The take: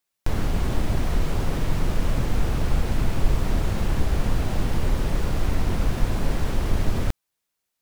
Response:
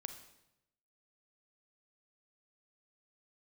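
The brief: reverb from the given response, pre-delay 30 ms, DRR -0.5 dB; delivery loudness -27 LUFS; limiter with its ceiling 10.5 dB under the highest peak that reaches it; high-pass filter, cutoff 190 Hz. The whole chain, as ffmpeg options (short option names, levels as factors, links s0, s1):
-filter_complex "[0:a]highpass=190,alimiter=limit=0.0668:level=0:latency=1,asplit=2[s0][s1];[1:a]atrim=start_sample=2205,adelay=30[s2];[s1][s2]afir=irnorm=-1:irlink=0,volume=1.5[s3];[s0][s3]amix=inputs=2:normalize=0,volume=1.41"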